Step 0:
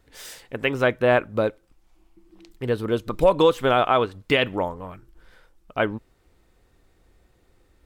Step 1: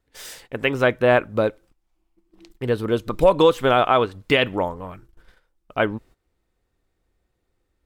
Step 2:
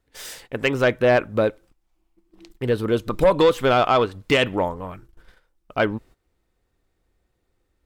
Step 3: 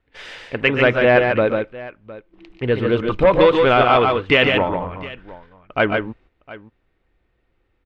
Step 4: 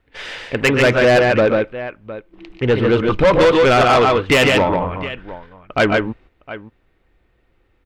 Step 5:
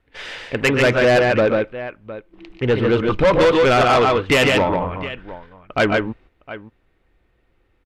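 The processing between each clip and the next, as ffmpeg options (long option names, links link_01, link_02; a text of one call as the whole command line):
ffmpeg -i in.wav -af "agate=range=-14dB:threshold=-49dB:ratio=16:detection=peak,volume=2dB" out.wav
ffmpeg -i in.wav -af "asoftclip=type=tanh:threshold=-10dB,volume=1.5dB" out.wav
ffmpeg -i in.wav -af "lowpass=frequency=2600:width_type=q:width=1.6,aecho=1:1:122|144|711:0.237|0.596|0.112,volume=2dB" out.wav
ffmpeg -i in.wav -af "asoftclip=type=tanh:threshold=-14dB,volume=6dB" out.wav
ffmpeg -i in.wav -af "aresample=32000,aresample=44100,volume=-2dB" out.wav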